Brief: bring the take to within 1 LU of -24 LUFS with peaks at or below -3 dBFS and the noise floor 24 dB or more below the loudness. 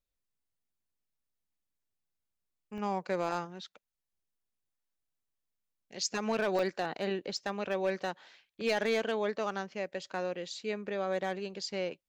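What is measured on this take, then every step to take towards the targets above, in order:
clipped 0.3%; flat tops at -22.5 dBFS; dropouts 3; longest dropout 2.4 ms; loudness -34.5 LUFS; peak -22.5 dBFS; loudness target -24.0 LUFS
-> clip repair -22.5 dBFS; interpolate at 2.78/6.59/7.37, 2.4 ms; gain +10.5 dB

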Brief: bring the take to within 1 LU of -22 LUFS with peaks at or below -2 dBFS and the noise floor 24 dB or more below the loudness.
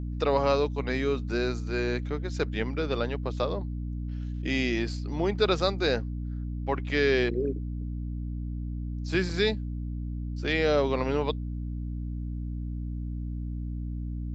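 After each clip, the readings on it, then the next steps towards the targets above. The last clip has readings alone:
hum 60 Hz; harmonics up to 300 Hz; hum level -30 dBFS; loudness -29.5 LUFS; peak -10.5 dBFS; loudness target -22.0 LUFS
-> de-hum 60 Hz, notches 5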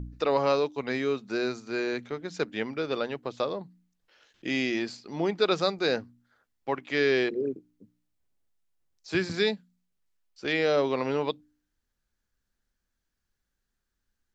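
hum none; loudness -29.0 LUFS; peak -11.5 dBFS; loudness target -22.0 LUFS
-> gain +7 dB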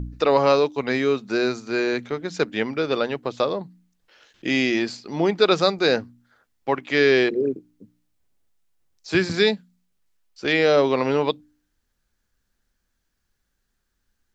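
loudness -22.0 LUFS; peak -4.5 dBFS; noise floor -75 dBFS

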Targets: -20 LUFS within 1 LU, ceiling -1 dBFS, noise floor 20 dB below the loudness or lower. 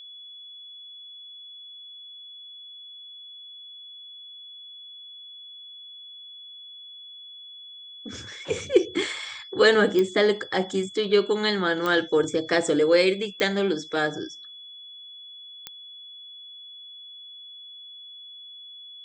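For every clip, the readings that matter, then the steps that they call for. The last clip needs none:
clicks 4; steady tone 3400 Hz; tone level -41 dBFS; loudness -23.5 LUFS; peak -6.0 dBFS; loudness target -20.0 LUFS
-> de-click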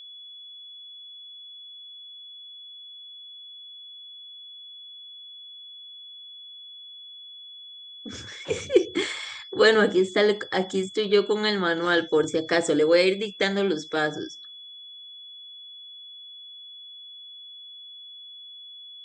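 clicks 0; steady tone 3400 Hz; tone level -41 dBFS
-> notch 3400 Hz, Q 30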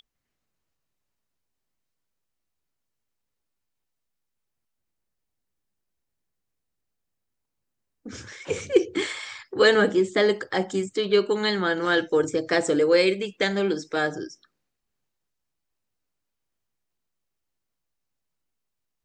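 steady tone none; loudness -23.0 LUFS; peak -6.0 dBFS; loudness target -20.0 LUFS
-> gain +3 dB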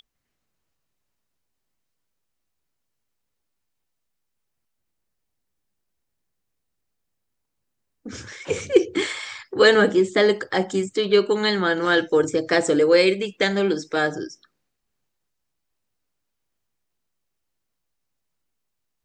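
loudness -20.0 LUFS; peak -3.0 dBFS; noise floor -78 dBFS

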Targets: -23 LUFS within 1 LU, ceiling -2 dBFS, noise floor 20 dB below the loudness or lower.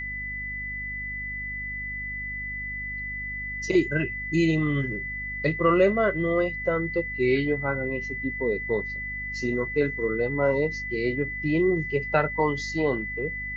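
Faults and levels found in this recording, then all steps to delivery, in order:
hum 50 Hz; harmonics up to 250 Hz; hum level -38 dBFS; steady tone 2000 Hz; tone level -31 dBFS; loudness -26.5 LUFS; peak -9.0 dBFS; loudness target -23.0 LUFS
-> de-hum 50 Hz, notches 5; notch 2000 Hz, Q 30; gain +3.5 dB

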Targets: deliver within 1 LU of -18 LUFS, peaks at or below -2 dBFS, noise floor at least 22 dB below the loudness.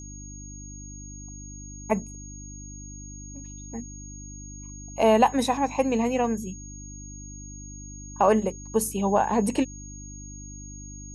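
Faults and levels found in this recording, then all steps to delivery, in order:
hum 50 Hz; harmonics up to 300 Hz; hum level -40 dBFS; steady tone 6600 Hz; tone level -43 dBFS; loudness -25.0 LUFS; peak -6.0 dBFS; loudness target -18.0 LUFS
-> de-hum 50 Hz, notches 6; notch 6600 Hz, Q 30; gain +7 dB; limiter -2 dBFS

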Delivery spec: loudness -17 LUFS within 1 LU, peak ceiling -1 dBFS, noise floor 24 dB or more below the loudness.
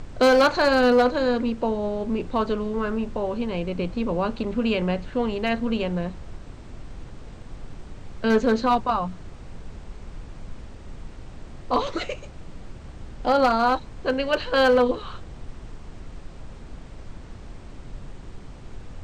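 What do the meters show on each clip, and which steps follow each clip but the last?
clipped 0.4%; flat tops at -12.5 dBFS; noise floor -42 dBFS; noise floor target -47 dBFS; loudness -23.0 LUFS; peak -12.5 dBFS; loudness target -17.0 LUFS
-> clip repair -12.5 dBFS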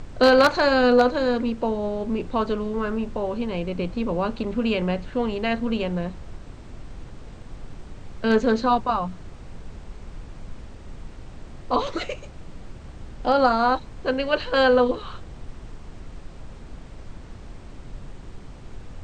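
clipped 0.0%; noise floor -42 dBFS; noise floor target -47 dBFS
-> noise print and reduce 6 dB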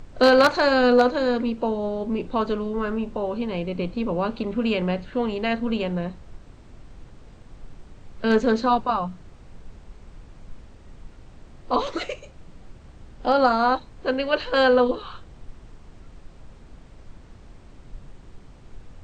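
noise floor -47 dBFS; loudness -23.0 LUFS; peak -3.5 dBFS; loudness target -17.0 LUFS
-> gain +6 dB; limiter -1 dBFS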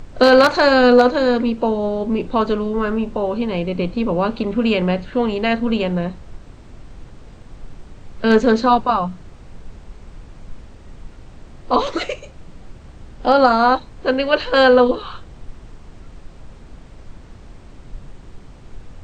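loudness -17.0 LUFS; peak -1.0 dBFS; noise floor -41 dBFS

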